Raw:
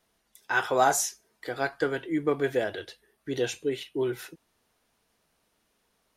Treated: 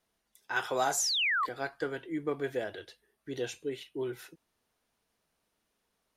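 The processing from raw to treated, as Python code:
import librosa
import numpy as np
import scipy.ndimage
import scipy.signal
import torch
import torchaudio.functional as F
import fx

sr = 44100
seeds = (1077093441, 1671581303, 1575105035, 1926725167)

y = fx.spec_paint(x, sr, seeds[0], shape='fall', start_s=0.97, length_s=0.49, low_hz=1000.0, high_hz=8000.0, level_db=-23.0)
y = fx.band_squash(y, sr, depth_pct=40, at=(0.56, 1.49))
y = y * 10.0 ** (-7.0 / 20.0)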